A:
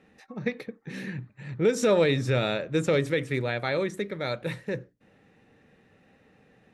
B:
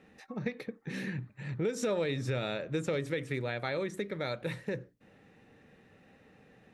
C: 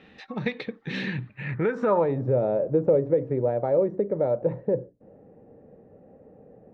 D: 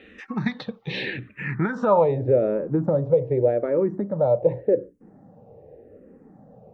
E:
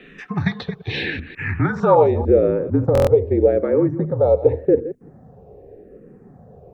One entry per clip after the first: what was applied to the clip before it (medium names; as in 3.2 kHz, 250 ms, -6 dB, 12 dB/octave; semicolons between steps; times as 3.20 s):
compression 2.5:1, threshold -33 dBFS, peak gain reduction 10.5 dB
dynamic bell 920 Hz, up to +6 dB, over -54 dBFS, Q 2.6; low-pass sweep 3.6 kHz -> 570 Hz, 1.20–2.31 s; trim +6 dB
barber-pole phaser -0.85 Hz; trim +6 dB
chunks repeated in reverse 150 ms, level -14 dB; frequency shift -43 Hz; buffer glitch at 2.93 s, samples 1024, times 5; trim +4.5 dB